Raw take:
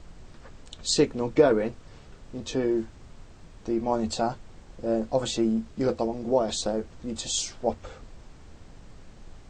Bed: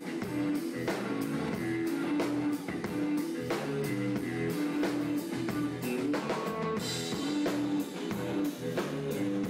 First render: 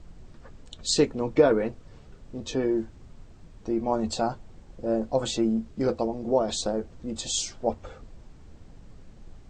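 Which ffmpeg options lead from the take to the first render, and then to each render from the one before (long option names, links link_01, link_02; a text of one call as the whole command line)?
ffmpeg -i in.wav -af "afftdn=noise_reduction=6:noise_floor=-50" out.wav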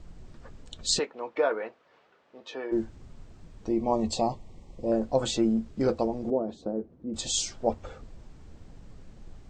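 ffmpeg -i in.wav -filter_complex "[0:a]asplit=3[link_01][link_02][link_03];[link_01]afade=type=out:start_time=0.98:duration=0.02[link_04];[link_02]highpass=680,lowpass=2800,afade=type=in:start_time=0.98:duration=0.02,afade=type=out:start_time=2.71:duration=0.02[link_05];[link_03]afade=type=in:start_time=2.71:duration=0.02[link_06];[link_04][link_05][link_06]amix=inputs=3:normalize=0,asettb=1/sr,asplit=3[link_07][link_08][link_09];[link_07]atrim=end=3.694[link_10];[link_08]atrim=start=3.69:end=4.92,asetpts=PTS-STARTPTS,afade=type=in:duration=0.004:curve=qsin,afade=type=out:start_time=1.226:duration=0.004:curve=qsin,asuperstop=centerf=1500:order=12:qfactor=2.4[link_11];[link_09]atrim=start=4.916[link_12];[link_10][link_11]acrossfade=duration=0.004:curve1=hsin:curve2=qsin[link_13];[link_13][link_12]acrossfade=duration=0.004:curve1=qsin:curve2=hsin,asettb=1/sr,asplit=3[link_14][link_15][link_16];[link_14]atrim=end=6.304[link_17];[link_15]atrim=start=6.3:end=7.14,asetpts=PTS-STARTPTS,afade=type=in:duration=0.004:curve=qsin,afade=type=out:start_time=0.836:duration=0.004:curve=qsin,bandpass=frequency=280:width_type=q:width=1.1[link_18];[link_16]atrim=start=7.136[link_19];[link_17][link_18]acrossfade=duration=0.004:curve1=hsin:curve2=qsin[link_20];[link_20][link_19]acrossfade=duration=0.004:curve1=qsin:curve2=hsin" out.wav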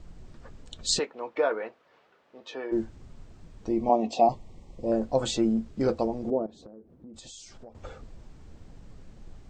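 ffmpeg -i in.wav -filter_complex "[0:a]asettb=1/sr,asplit=3[link_01][link_02][link_03];[link_01]atrim=end=3.894[link_04];[link_02]atrim=start=3.89:end=4.29,asetpts=PTS-STARTPTS,afade=type=in:duration=0.004:curve=qsin,afade=type=out:start_time=0.396:duration=0.004:curve=qsin,highpass=260,equalizer=frequency=260:width_type=q:width=4:gain=8,equalizer=frequency=710:width_type=q:width=4:gain=10,equalizer=frequency=1100:width_type=q:width=4:gain=-3,equalizer=frequency=1700:width_type=q:width=4:gain=-7,equalizer=frequency=2600:width_type=q:width=4:gain=6,equalizer=frequency=4400:width_type=q:width=4:gain=-8,lowpass=frequency=5700:width=0.5412,lowpass=frequency=5700:width=1.3066[link_05];[link_03]atrim=start=4.286[link_06];[link_04][link_05]acrossfade=duration=0.004:curve1=hsin:curve2=qsin[link_07];[link_07][link_06]acrossfade=duration=0.004:curve1=qsin:curve2=hsin,asettb=1/sr,asplit=3[link_08][link_09][link_10];[link_08]atrim=end=6.464[link_11];[link_09]atrim=start=6.46:end=7.75,asetpts=PTS-STARTPTS,afade=type=in:duration=0.004:curve=qsin,afade=type=out:start_time=1.286:duration=0.004:curve=qsin,acompressor=threshold=-43dB:ratio=12:attack=3.2:release=140:knee=1:detection=peak[link_12];[link_10]atrim=start=7.746[link_13];[link_11][link_12]acrossfade=duration=0.004:curve1=hsin:curve2=qsin[link_14];[link_14][link_13]acrossfade=duration=0.004:curve1=qsin:curve2=hsin" out.wav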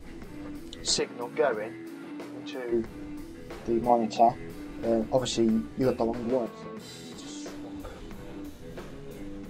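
ffmpeg -i in.wav -i bed.wav -filter_complex "[1:a]volume=-9.5dB[link_01];[0:a][link_01]amix=inputs=2:normalize=0" out.wav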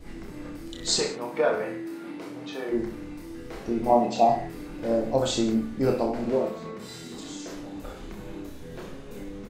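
ffmpeg -i in.wav -filter_complex "[0:a]asplit=2[link_01][link_02];[link_02]adelay=25,volume=-12dB[link_03];[link_01][link_03]amix=inputs=2:normalize=0,aecho=1:1:30|63|99.3|139.2|183.2:0.631|0.398|0.251|0.158|0.1" out.wav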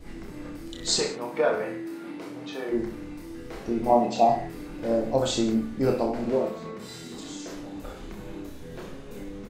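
ffmpeg -i in.wav -af anull out.wav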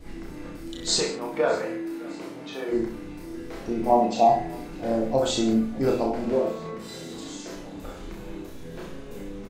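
ffmpeg -i in.wav -filter_complex "[0:a]asplit=2[link_01][link_02];[link_02]adelay=36,volume=-6dB[link_03];[link_01][link_03]amix=inputs=2:normalize=0,aecho=1:1:608|1216|1824:0.0708|0.0347|0.017" out.wav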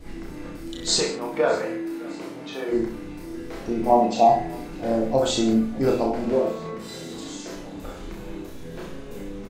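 ffmpeg -i in.wav -af "volume=2dB" out.wav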